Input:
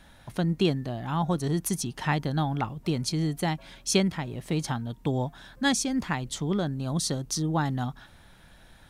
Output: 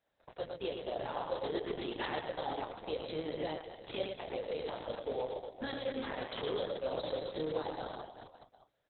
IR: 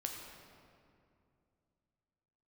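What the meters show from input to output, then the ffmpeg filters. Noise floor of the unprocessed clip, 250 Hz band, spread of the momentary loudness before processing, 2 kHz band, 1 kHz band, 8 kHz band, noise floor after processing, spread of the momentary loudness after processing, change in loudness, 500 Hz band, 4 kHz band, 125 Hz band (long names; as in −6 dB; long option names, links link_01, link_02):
−54 dBFS, −16.0 dB, 7 LU, −10.5 dB, −8.0 dB, below −40 dB, −75 dBFS, 7 LU, −10.5 dB, −2.5 dB, −10.0 dB, −23.0 dB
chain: -filter_complex "[0:a]highpass=frequency=510:width_type=q:width=4.9,aemphasis=mode=reproduction:type=50kf,acrossover=split=3100[link_01][link_02];[link_02]acompressor=threshold=-44dB:ratio=4:attack=1:release=60[link_03];[link_01][link_03]amix=inputs=2:normalize=0,highshelf=frequency=6600:gain=7.5,acrossover=split=4500[link_04][link_05];[link_04]acompressor=threshold=-40dB:ratio=10[link_06];[link_06][link_05]amix=inputs=2:normalize=0,alimiter=level_in=12dB:limit=-24dB:level=0:latency=1:release=15,volume=-12dB,aeval=exprs='val(0)+0.001*(sin(2*PI*60*n/s)+sin(2*PI*2*60*n/s)/2+sin(2*PI*3*60*n/s)/3+sin(2*PI*4*60*n/s)/4+sin(2*PI*5*60*n/s)/5)':channel_layout=same,acrusher=bits=4:mode=log:mix=0:aa=0.000001,agate=range=-39dB:threshold=-47dB:ratio=16:detection=peak,asplit=2[link_07][link_08];[link_08]adelay=26,volume=-5dB[link_09];[link_07][link_09]amix=inputs=2:normalize=0,aecho=1:1:110|236.5|382|549.3|741.7:0.631|0.398|0.251|0.158|0.1,volume=7.5dB" -ar 48000 -c:a libopus -b:a 6k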